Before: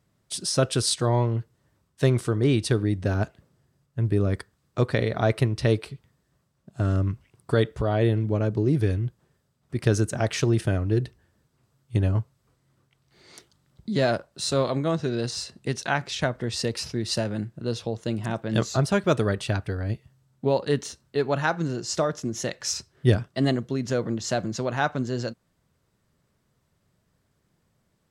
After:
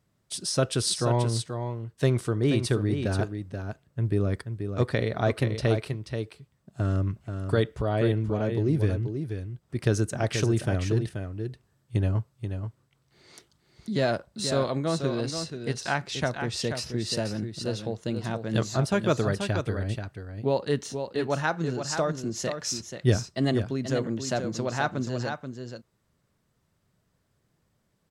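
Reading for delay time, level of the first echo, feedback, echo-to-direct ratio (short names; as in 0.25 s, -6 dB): 0.482 s, -7.5 dB, no steady repeat, -7.5 dB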